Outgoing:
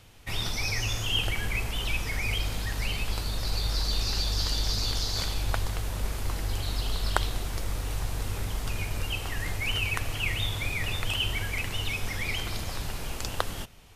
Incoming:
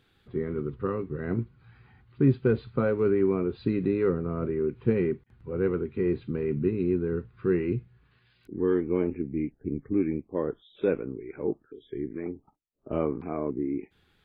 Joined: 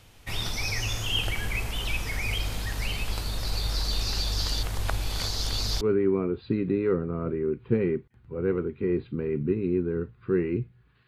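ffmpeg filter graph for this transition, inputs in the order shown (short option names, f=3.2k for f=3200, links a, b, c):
-filter_complex "[0:a]apad=whole_dur=11.07,atrim=end=11.07,asplit=2[a][b];[a]atrim=end=4.632[c];[b]atrim=start=4.628:end=5.812,asetpts=PTS-STARTPTS,areverse[d];[1:a]atrim=start=2.968:end=8.23[e];[c][d]acrossfade=d=0.004:c1=hsin:c2=hsin[f];[f][e]acrossfade=d=0.004:c1=hsin:c2=hsin"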